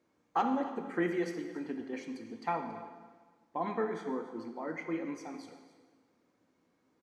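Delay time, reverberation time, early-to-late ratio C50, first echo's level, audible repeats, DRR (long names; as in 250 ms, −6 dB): 279 ms, 1.4 s, 7.0 dB, −17.0 dB, 1, 5.0 dB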